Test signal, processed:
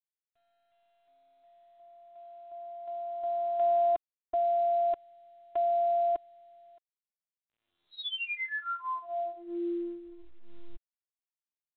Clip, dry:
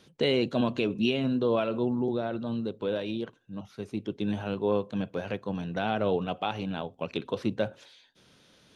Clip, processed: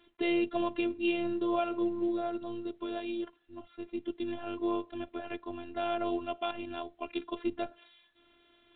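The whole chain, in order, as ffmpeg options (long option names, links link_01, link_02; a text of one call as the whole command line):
ffmpeg -i in.wav -af "afftfilt=real='hypot(re,im)*cos(PI*b)':imag='0':win_size=512:overlap=0.75" -ar 8000 -c:a pcm_mulaw out.wav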